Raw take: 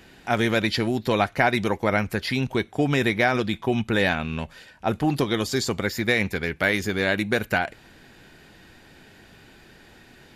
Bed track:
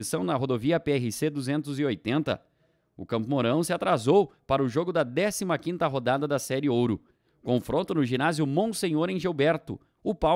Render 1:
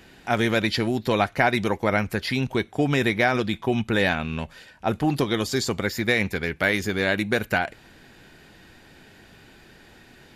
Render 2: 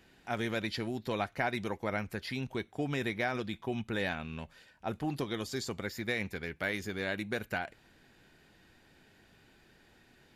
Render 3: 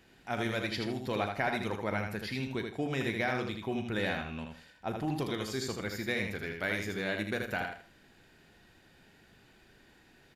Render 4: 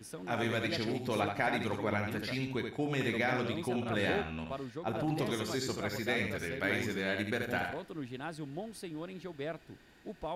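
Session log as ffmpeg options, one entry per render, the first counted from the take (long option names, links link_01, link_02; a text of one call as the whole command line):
ffmpeg -i in.wav -af anull out.wav
ffmpeg -i in.wav -af "volume=-12dB" out.wav
ffmpeg -i in.wav -filter_complex "[0:a]asplit=2[link_01][link_02];[link_02]adelay=38,volume=-12.5dB[link_03];[link_01][link_03]amix=inputs=2:normalize=0,aecho=1:1:79|158|237:0.562|0.146|0.038" out.wav
ffmpeg -i in.wav -i bed.wav -filter_complex "[1:a]volume=-16dB[link_01];[0:a][link_01]amix=inputs=2:normalize=0" out.wav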